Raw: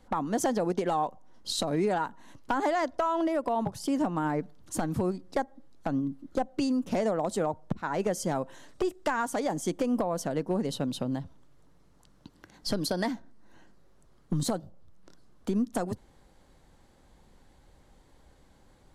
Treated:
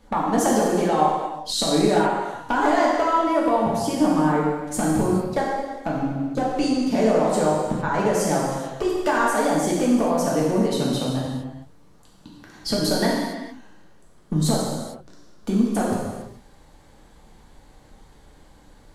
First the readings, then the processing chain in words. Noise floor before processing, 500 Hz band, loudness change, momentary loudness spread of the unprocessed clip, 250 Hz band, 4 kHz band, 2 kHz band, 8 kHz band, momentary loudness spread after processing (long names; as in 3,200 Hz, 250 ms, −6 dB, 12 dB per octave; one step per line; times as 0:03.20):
−60 dBFS, +8.5 dB, +8.5 dB, 8 LU, +9.0 dB, +9.5 dB, +9.5 dB, +9.5 dB, 9 LU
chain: reverb whose tail is shaped and stops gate 480 ms falling, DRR −5 dB
level +3 dB